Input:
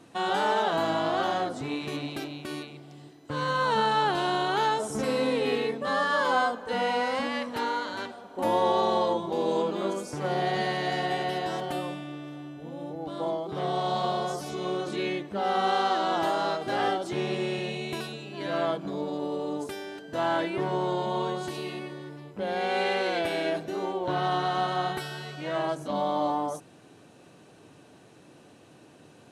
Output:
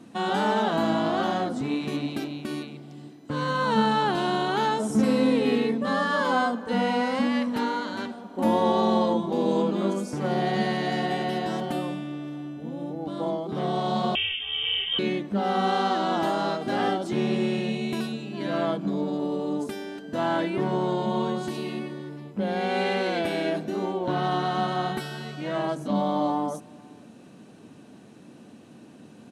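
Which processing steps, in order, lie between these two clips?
parametric band 220 Hz +13.5 dB 0.67 octaves
slap from a distant wall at 87 metres, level −27 dB
0:14.15–0:14.99: voice inversion scrambler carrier 3,400 Hz

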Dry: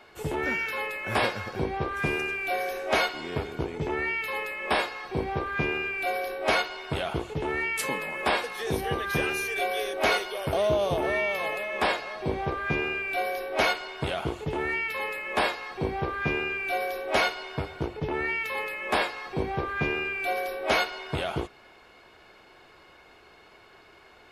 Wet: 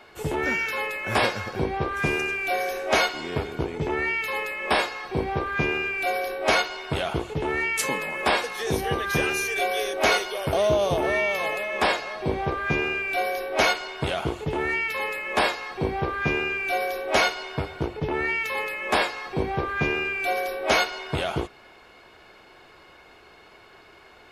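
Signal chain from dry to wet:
dynamic equaliser 6,400 Hz, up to +6 dB, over −51 dBFS, Q 2
level +3 dB

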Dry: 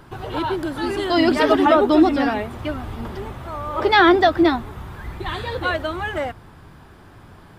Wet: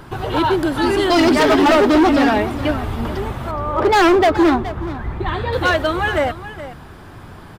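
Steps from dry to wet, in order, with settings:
0:03.51–0:05.53: low-pass filter 1,400 Hz 6 dB per octave
hard clipping −17 dBFS, distortion −8 dB
single-tap delay 422 ms −14 dB
level +7 dB

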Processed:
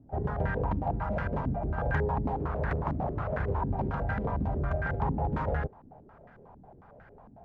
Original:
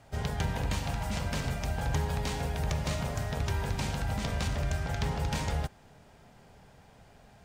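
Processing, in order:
0:02.35–0:03.61: phase distortion by the signal itself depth 0.93 ms
low-pass on a step sequencer 11 Hz 280–1,600 Hz

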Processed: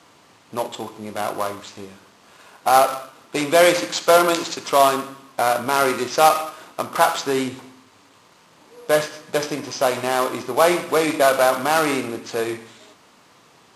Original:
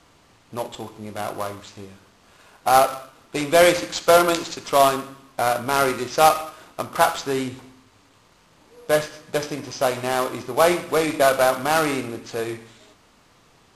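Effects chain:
Bessel high-pass filter 170 Hz, order 2
parametric band 1,000 Hz +2 dB 0.34 octaves
in parallel at −2.5 dB: brickwall limiter −15.5 dBFS, peak gain reduction 13 dB
on the sum: level −1 dB

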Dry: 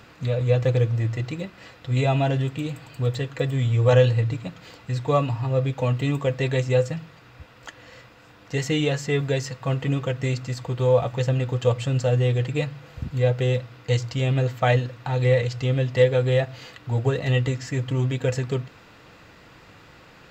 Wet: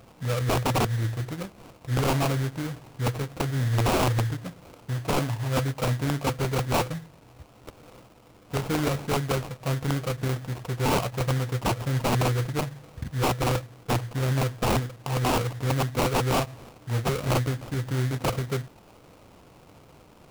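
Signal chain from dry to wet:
sample-rate reduction 1,800 Hz, jitter 20%
wrap-around overflow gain 14.5 dB
level −3 dB

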